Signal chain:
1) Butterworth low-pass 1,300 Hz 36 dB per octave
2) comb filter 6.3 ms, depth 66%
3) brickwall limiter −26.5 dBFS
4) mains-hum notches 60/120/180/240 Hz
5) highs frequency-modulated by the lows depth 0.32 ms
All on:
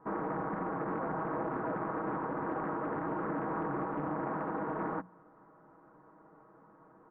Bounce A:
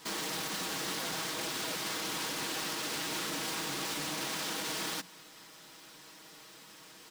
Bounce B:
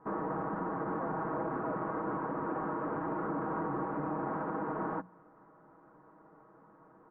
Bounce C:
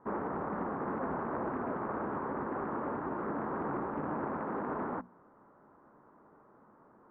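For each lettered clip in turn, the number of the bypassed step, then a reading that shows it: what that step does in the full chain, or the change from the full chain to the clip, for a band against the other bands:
1, 2 kHz band +12.0 dB
5, 2 kHz band −1.5 dB
2, 125 Hz band −1.5 dB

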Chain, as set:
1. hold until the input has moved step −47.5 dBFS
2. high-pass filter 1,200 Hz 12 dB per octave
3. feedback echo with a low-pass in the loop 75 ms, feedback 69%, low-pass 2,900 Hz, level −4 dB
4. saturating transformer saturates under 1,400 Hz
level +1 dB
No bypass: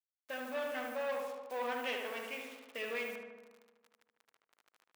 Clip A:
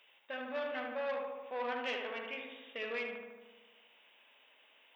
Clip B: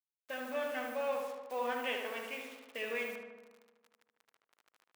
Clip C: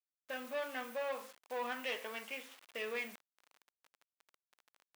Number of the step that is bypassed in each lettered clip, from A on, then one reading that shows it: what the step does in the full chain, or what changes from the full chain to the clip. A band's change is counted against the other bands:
1, distortion level −27 dB
4, change in integrated loudness +1.0 LU
3, change in momentary loudness spread −2 LU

